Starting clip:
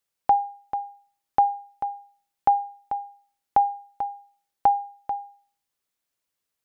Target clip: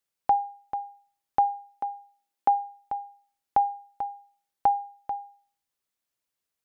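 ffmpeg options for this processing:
-filter_complex "[0:a]asettb=1/sr,asplit=3[s0][s1][s2];[s0]atrim=end=1.734[s3];[s1]atrim=start=1.73:end=2.55,asetpts=PTS-STARTPTS,afade=t=in:d=0.004:c=qsin,afade=t=out:st=0.816:d=0.004:c=qsin,lowshelf=f=170:t=q:w=1.5:g=-12.5[s4];[s2]atrim=start=2.546[s5];[s3][s4]acrossfade=d=0.004:c1=hsin:c2=qsin[s6];[s6][s5]acrossfade=d=0.004:c1=qsin:c2=hsin,volume=0.708"

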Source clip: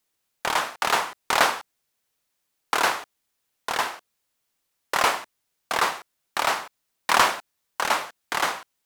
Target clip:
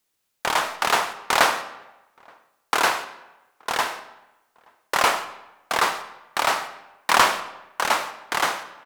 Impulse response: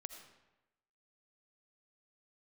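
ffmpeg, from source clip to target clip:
-filter_complex "[0:a]asplit=2[s0][s1];[s1]adelay=874.6,volume=0.0316,highshelf=f=4000:g=-19.7[s2];[s0][s2]amix=inputs=2:normalize=0,asplit=2[s3][s4];[1:a]atrim=start_sample=2205[s5];[s4][s5]afir=irnorm=-1:irlink=0,volume=1.68[s6];[s3][s6]amix=inputs=2:normalize=0,volume=0.631"

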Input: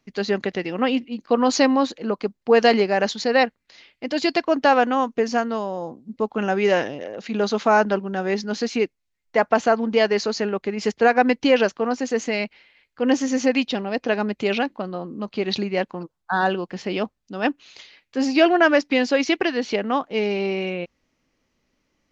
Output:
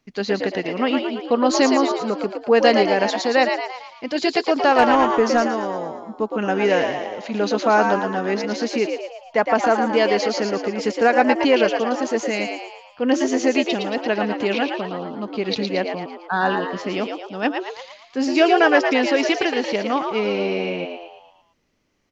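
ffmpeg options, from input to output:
-filter_complex "[0:a]asplit=7[s0][s1][s2][s3][s4][s5][s6];[s1]adelay=113,afreqshift=80,volume=0.531[s7];[s2]adelay=226,afreqshift=160,volume=0.266[s8];[s3]adelay=339,afreqshift=240,volume=0.133[s9];[s4]adelay=452,afreqshift=320,volume=0.0661[s10];[s5]adelay=565,afreqshift=400,volume=0.0331[s11];[s6]adelay=678,afreqshift=480,volume=0.0166[s12];[s0][s7][s8][s9][s10][s11][s12]amix=inputs=7:normalize=0,asplit=3[s13][s14][s15];[s13]afade=t=out:st=4.78:d=0.02[s16];[s14]aeval=exprs='0.708*(cos(1*acos(clip(val(0)/0.708,-1,1)))-cos(1*PI/2))+0.0891*(cos(5*acos(clip(val(0)/0.708,-1,1)))-cos(5*PI/2))':c=same,afade=t=in:st=4.78:d=0.02,afade=t=out:st=5.46:d=0.02[s17];[s15]afade=t=in:st=5.46:d=0.02[s18];[s16][s17][s18]amix=inputs=3:normalize=0"

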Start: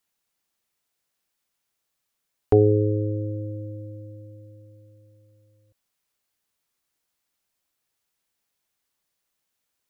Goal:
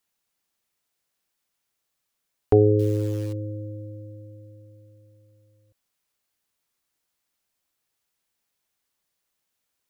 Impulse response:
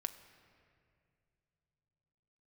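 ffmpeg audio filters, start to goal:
-filter_complex "[0:a]asettb=1/sr,asplit=3[s0][s1][s2];[s0]atrim=end=2.794[s3];[s1]atrim=start=2.79:end=3.33,asetpts=PTS-STARTPTS,afade=t=in:d=0.004:c=qsin,afade=t=out:st=0.536:d=0.004:c=qsin,acrusher=bits=8:dc=4:mix=0:aa=0.000001[s4];[s2]atrim=start=3.326[s5];[s3][s4]acrossfade=d=0.004:c1=hsin:c2=qsin[s6];[s6][s5]acrossfade=d=0.004:c1=qsin:c2=hsin"

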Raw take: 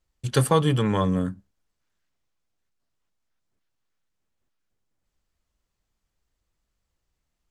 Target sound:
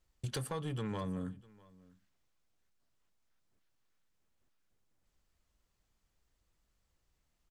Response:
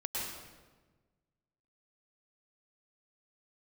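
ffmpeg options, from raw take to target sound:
-af "acompressor=threshold=0.0178:ratio=5,asoftclip=type=tanh:threshold=0.0335,aecho=1:1:649:0.0668"

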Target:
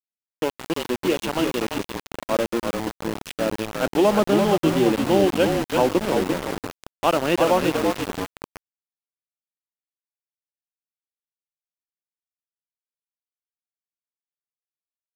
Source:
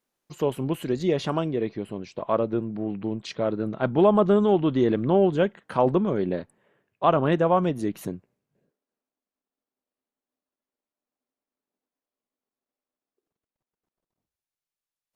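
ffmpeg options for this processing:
-filter_complex "[0:a]highpass=f=240:w=0.5412,highpass=f=240:w=1.3066,equalizer=f=270:t=q:w=4:g=-4,equalizer=f=420:t=q:w=4:g=-8,equalizer=f=690:t=q:w=4:g=-7,equalizer=f=1100:t=q:w=4:g=-9,equalizer=f=1800:t=q:w=4:g=-7,equalizer=f=2800:t=q:w=4:g=6,lowpass=f=3300:w=0.5412,lowpass=f=3300:w=1.3066,asplit=7[s0][s1][s2][s3][s4][s5][s6];[s1]adelay=340,afreqshift=-38,volume=0.596[s7];[s2]adelay=680,afreqshift=-76,volume=0.275[s8];[s3]adelay=1020,afreqshift=-114,volume=0.126[s9];[s4]adelay=1360,afreqshift=-152,volume=0.0582[s10];[s5]adelay=1700,afreqshift=-190,volume=0.0266[s11];[s6]adelay=2040,afreqshift=-228,volume=0.0123[s12];[s0][s7][s8][s9][s10][s11][s12]amix=inputs=7:normalize=0,aeval=exprs='val(0)*gte(abs(val(0)),0.0335)':c=same,volume=2.11"

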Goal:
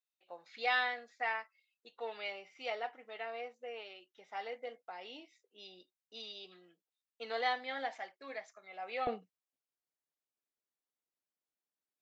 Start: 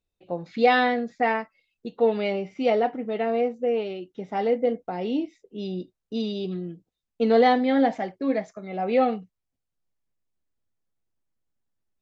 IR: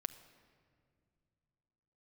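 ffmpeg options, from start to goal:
-af "asetnsamples=n=441:p=0,asendcmd='9.07 highpass f 370',highpass=1100,volume=0.447"

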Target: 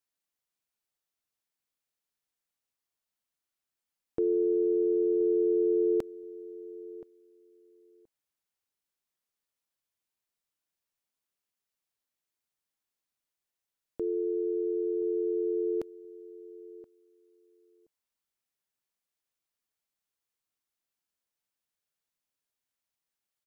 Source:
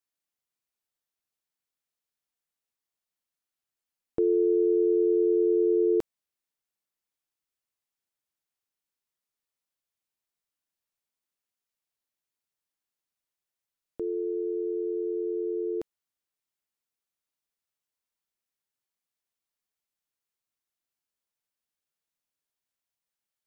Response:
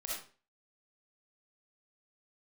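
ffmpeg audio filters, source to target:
-filter_complex "[0:a]alimiter=limit=0.0944:level=0:latency=1:release=10,asplit=2[s0][s1];[s1]adelay=1025,lowpass=f=870:p=1,volume=0.141,asplit=2[s2][s3];[s3]adelay=1025,lowpass=f=870:p=1,volume=0.16[s4];[s0][s2][s4]amix=inputs=3:normalize=0"

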